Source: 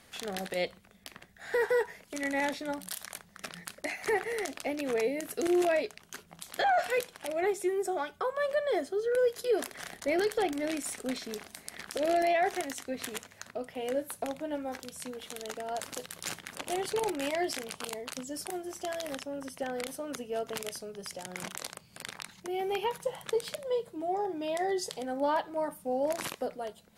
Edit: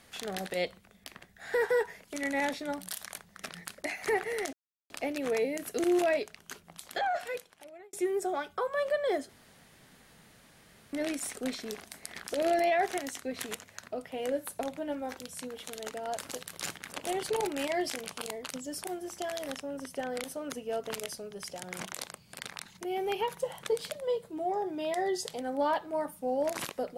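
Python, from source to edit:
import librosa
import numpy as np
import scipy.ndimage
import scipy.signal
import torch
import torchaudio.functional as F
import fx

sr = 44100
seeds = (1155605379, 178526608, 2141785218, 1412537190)

y = fx.edit(x, sr, fx.insert_silence(at_s=4.53, length_s=0.37),
    fx.fade_out_span(start_s=6.15, length_s=1.41),
    fx.room_tone_fill(start_s=8.92, length_s=1.64), tone=tone)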